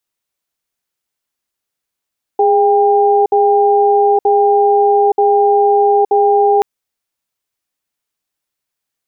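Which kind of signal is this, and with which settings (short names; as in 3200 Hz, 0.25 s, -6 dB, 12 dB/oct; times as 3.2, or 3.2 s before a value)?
cadence 412 Hz, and 799 Hz, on 0.87 s, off 0.06 s, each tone -10.5 dBFS 4.23 s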